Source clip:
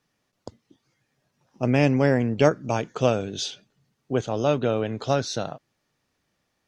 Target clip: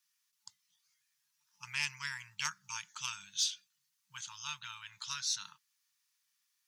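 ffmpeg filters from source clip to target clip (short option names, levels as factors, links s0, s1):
-af "afftfilt=real='re*(1-between(b*sr/4096,200,870))':imag='im*(1-between(b*sr/4096,200,870))':win_size=4096:overlap=0.75,aeval=exprs='0.299*(cos(1*acos(clip(val(0)/0.299,-1,1)))-cos(1*PI/2))+0.00841*(cos(2*acos(clip(val(0)/0.299,-1,1)))-cos(2*PI/2))+0.0335*(cos(3*acos(clip(val(0)/0.299,-1,1)))-cos(3*PI/2))':c=same,aderivative,volume=1.88"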